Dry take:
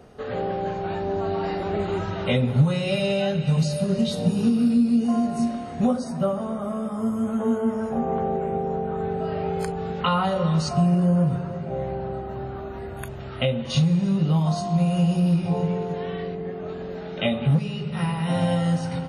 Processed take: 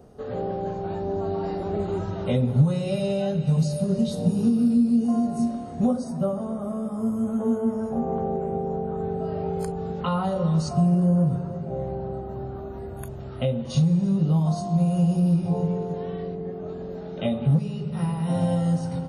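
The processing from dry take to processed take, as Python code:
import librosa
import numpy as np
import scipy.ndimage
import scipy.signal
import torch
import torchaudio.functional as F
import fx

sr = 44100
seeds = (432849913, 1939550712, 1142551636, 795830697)

y = fx.peak_eq(x, sr, hz=2300.0, db=-12.0, octaves=2.1)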